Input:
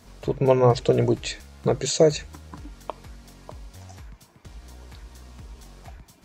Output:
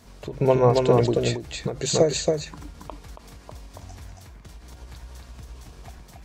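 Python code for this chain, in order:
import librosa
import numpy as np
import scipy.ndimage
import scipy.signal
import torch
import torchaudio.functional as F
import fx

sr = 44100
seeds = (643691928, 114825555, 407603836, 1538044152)

p1 = x + fx.echo_single(x, sr, ms=277, db=-3.0, dry=0)
y = fx.end_taper(p1, sr, db_per_s=140.0)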